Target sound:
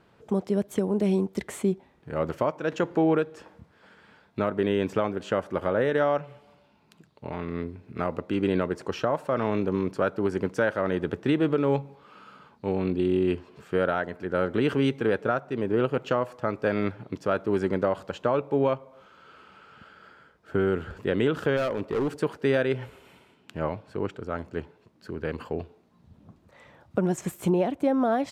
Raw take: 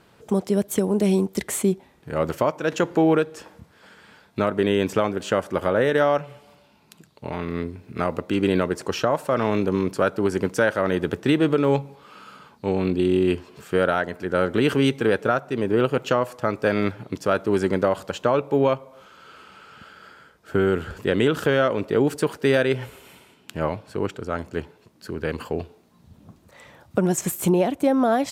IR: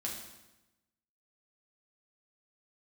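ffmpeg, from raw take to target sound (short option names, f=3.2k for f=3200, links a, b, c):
-filter_complex "[0:a]lowpass=f=2.7k:p=1,asplit=3[a][b][c];[a]afade=t=out:st=21.56:d=0.02[d];[b]asoftclip=type=hard:threshold=-18.5dB,afade=t=in:st=21.56:d=0.02,afade=t=out:st=22.2:d=0.02[e];[c]afade=t=in:st=22.2:d=0.02[f];[d][e][f]amix=inputs=3:normalize=0,volume=-4dB"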